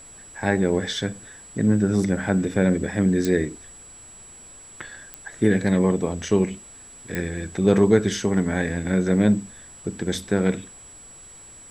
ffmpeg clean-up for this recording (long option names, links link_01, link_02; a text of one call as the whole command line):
ffmpeg -i in.wav -af "adeclick=threshold=4,bandreject=frequency=7800:width=30,agate=range=-21dB:threshold=-37dB" out.wav